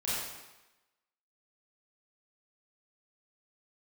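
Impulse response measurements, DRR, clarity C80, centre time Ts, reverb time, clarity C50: -10.0 dB, 0.0 dB, 97 ms, 1.0 s, -3.5 dB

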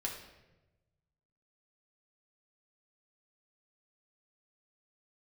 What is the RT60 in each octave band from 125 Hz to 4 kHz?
1.8 s, 1.3 s, 1.2 s, 0.90 s, 0.90 s, 0.75 s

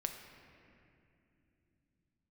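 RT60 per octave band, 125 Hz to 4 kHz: 5.1 s, 4.8 s, 3.2 s, 2.2 s, 2.6 s, 1.8 s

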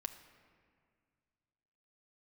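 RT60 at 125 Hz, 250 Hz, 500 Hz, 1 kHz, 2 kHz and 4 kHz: 2.7 s, 2.4 s, 2.1 s, 2.0 s, 1.9 s, 1.3 s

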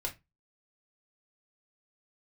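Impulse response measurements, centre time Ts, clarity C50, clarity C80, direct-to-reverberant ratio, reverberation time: 11 ms, 15.5 dB, 24.5 dB, 0.0 dB, 0.20 s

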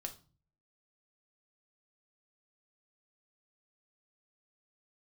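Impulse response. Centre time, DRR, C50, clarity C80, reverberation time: 9 ms, 4.5 dB, 13.5 dB, 20.0 dB, 0.35 s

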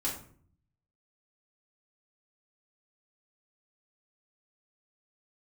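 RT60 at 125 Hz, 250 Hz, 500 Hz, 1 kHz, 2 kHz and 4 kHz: 1.0 s, 0.80 s, 0.55 s, 0.45 s, 0.40 s, 0.30 s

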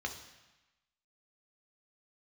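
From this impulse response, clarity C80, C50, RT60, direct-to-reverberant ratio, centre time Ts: 11.5 dB, 9.0 dB, 1.1 s, 3.0 dB, 18 ms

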